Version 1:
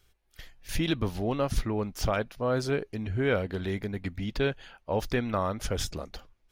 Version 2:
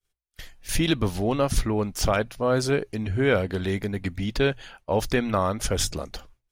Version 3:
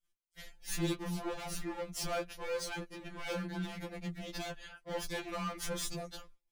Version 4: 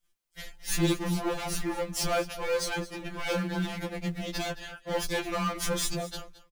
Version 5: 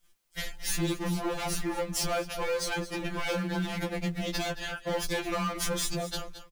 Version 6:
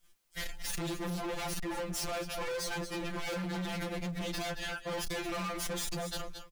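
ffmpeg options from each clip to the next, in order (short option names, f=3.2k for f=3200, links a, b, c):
-af "agate=range=-33dB:threshold=-52dB:ratio=3:detection=peak,equalizer=f=8.9k:t=o:w=1.1:g=6.5,bandreject=f=60:t=h:w=6,bandreject=f=120:t=h:w=6,volume=5dB"
-af "asoftclip=type=hard:threshold=-27.5dB,afftfilt=real='re*2.83*eq(mod(b,8),0)':imag='im*2.83*eq(mod(b,8),0)':win_size=2048:overlap=0.75,volume=-4dB"
-filter_complex "[0:a]asplit=2[a][b];[b]acrusher=bits=3:mode=log:mix=0:aa=0.000001,volume=-11.5dB[c];[a][c]amix=inputs=2:normalize=0,aecho=1:1:220:0.141,volume=6dB"
-af "acompressor=threshold=-40dB:ratio=3,volume=9dB"
-af "volume=34dB,asoftclip=hard,volume=-34dB"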